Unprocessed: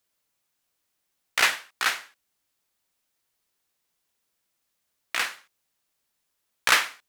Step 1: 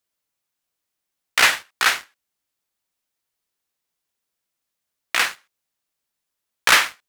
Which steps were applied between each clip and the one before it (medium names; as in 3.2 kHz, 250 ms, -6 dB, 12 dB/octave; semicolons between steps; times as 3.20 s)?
waveshaping leveller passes 2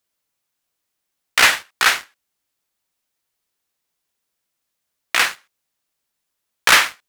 saturation -5.5 dBFS, distortion -23 dB; trim +3.5 dB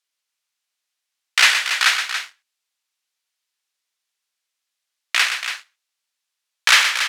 band-pass filter 3.7 kHz, Q 0.57; loudspeakers at several distances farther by 42 m -8 dB, 97 m -9 dB; trim +1 dB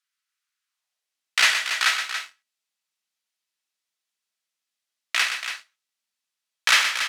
high-pass sweep 1.4 kHz -> 190 Hz, 0.66–1.30 s; feedback comb 650 Hz, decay 0.21 s, harmonics all, mix 60%; trim +2.5 dB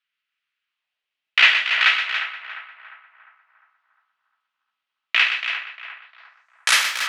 band-passed feedback delay 352 ms, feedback 50%, band-pass 1 kHz, level -8.5 dB; low-pass sweep 2.8 kHz -> 15 kHz, 5.98–6.92 s